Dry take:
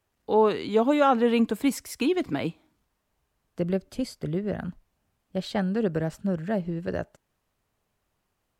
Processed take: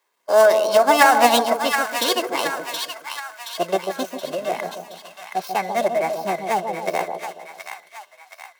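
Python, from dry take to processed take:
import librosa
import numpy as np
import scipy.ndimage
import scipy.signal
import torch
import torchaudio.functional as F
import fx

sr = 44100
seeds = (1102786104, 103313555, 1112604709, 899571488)

p1 = fx.dead_time(x, sr, dead_ms=0.081)
p2 = scipy.signal.sosfilt(scipy.signal.bessel(4, 420.0, 'highpass', norm='mag', fs=sr, output='sos'), p1)
p3 = fx.peak_eq(p2, sr, hz=2600.0, db=-2.0, octaves=0.77)
p4 = p3 + 0.49 * np.pad(p3, (int(1.9 * sr / 1000.0), 0))[:len(p3)]
p5 = fx.formant_shift(p4, sr, semitones=5)
p6 = p5 + fx.echo_split(p5, sr, split_hz=990.0, low_ms=141, high_ms=723, feedback_pct=52, wet_db=-5.5, dry=0)
y = F.gain(torch.from_numpy(p6), 8.0).numpy()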